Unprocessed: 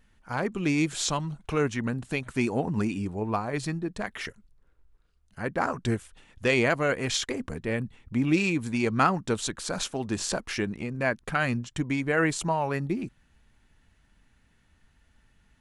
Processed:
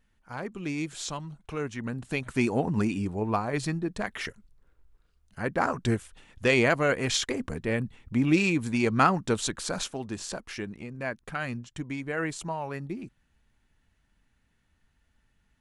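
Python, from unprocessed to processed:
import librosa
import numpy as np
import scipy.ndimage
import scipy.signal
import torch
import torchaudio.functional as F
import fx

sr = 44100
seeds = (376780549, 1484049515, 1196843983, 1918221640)

y = fx.gain(x, sr, db=fx.line((1.67, -7.0), (2.27, 1.0), (9.63, 1.0), (10.2, -6.5)))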